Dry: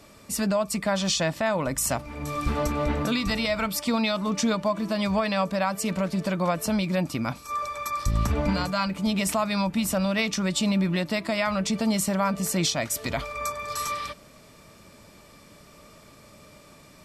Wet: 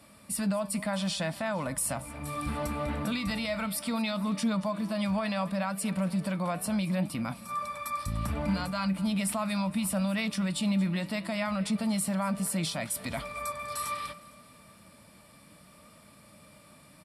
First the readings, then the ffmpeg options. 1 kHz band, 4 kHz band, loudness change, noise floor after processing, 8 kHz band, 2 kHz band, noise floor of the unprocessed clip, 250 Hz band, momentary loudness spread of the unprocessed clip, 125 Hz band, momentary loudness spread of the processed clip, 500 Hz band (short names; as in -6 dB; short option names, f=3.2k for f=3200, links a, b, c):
-6.0 dB, -7.0 dB, -5.0 dB, -56 dBFS, -5.0 dB, -6.0 dB, -52 dBFS, -3.5 dB, 6 LU, -4.0 dB, 6 LU, -7.5 dB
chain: -filter_complex "[0:a]highpass=57,equalizer=f=9.7k:t=o:w=0.23:g=13,asplit=2[a][b];[b]aecho=0:1:229|458|687|916:0.0891|0.0508|0.029|0.0165[c];[a][c]amix=inputs=2:normalize=0,flanger=delay=3.6:depth=5.1:regen=84:speed=0.69:shape=triangular,asplit=2[d][e];[e]alimiter=level_in=0.5dB:limit=-24dB:level=0:latency=1:release=21,volume=-0.5dB,volume=3dB[f];[d][f]amix=inputs=2:normalize=0,equalizer=f=200:t=o:w=0.33:g=4,equalizer=f=400:t=o:w=0.33:g=-11,equalizer=f=6.3k:t=o:w=0.33:g=-11,volume=-7.5dB"